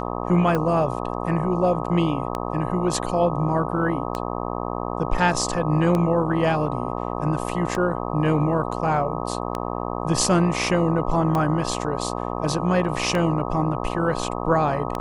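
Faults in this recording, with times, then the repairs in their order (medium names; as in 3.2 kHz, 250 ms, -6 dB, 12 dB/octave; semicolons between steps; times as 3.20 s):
buzz 60 Hz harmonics 21 -28 dBFS
tick 33 1/3 rpm -12 dBFS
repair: de-click; de-hum 60 Hz, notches 21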